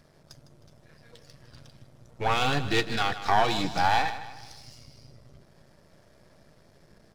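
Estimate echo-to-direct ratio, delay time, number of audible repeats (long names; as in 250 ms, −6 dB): −12.0 dB, 156 ms, 3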